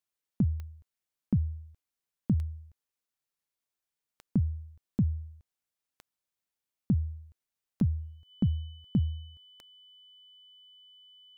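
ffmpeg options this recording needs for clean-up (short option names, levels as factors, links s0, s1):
-af "adeclick=t=4,bandreject=f=3000:w=30"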